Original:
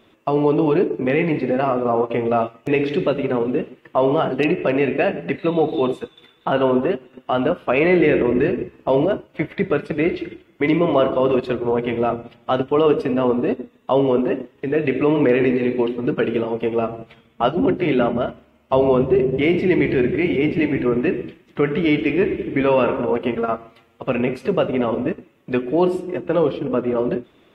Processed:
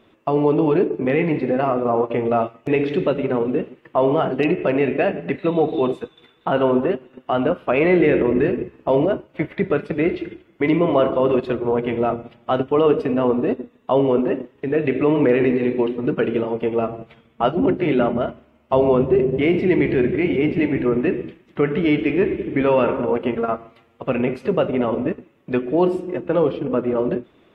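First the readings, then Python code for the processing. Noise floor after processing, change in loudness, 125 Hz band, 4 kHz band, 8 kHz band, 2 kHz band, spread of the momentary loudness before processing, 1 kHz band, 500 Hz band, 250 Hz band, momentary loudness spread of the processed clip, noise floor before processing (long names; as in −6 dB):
−57 dBFS, 0.0 dB, 0.0 dB, −3.0 dB, can't be measured, −2.0 dB, 8 LU, −0.5 dB, 0.0 dB, 0.0 dB, 8 LU, −56 dBFS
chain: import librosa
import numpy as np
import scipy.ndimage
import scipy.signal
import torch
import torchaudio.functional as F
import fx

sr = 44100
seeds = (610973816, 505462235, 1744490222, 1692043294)

y = fx.high_shelf(x, sr, hz=3500.0, db=-7.0)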